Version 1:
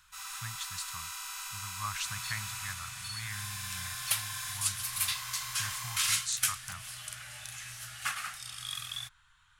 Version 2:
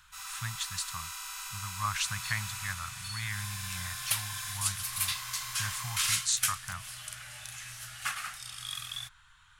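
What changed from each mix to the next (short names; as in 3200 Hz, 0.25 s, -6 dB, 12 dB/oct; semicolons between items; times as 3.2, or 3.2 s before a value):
speech +5.0 dB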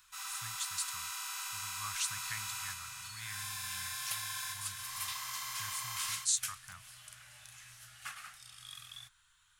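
speech: add pre-emphasis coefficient 0.8; second sound -10.5 dB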